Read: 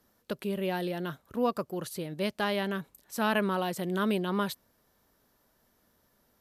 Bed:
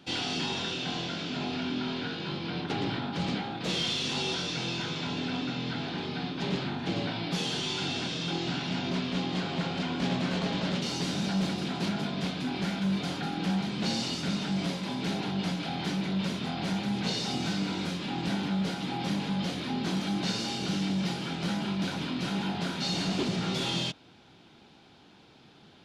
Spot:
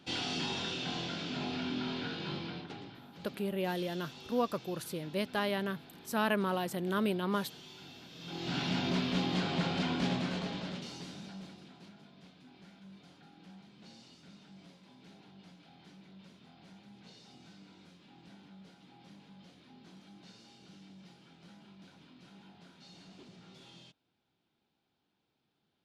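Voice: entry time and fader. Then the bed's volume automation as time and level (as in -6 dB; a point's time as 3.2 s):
2.95 s, -3.0 dB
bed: 2.39 s -4 dB
2.93 s -19.5 dB
8.09 s -19.5 dB
8.59 s -1 dB
9.92 s -1 dB
11.96 s -25 dB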